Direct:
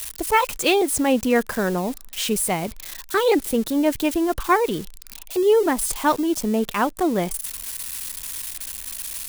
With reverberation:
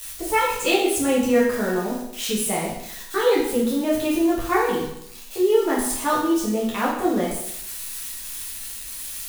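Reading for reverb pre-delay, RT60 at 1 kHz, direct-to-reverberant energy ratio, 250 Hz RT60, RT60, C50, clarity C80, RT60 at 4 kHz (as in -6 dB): 8 ms, 0.75 s, -7.0 dB, 0.75 s, 0.80 s, 2.5 dB, 5.5 dB, 0.75 s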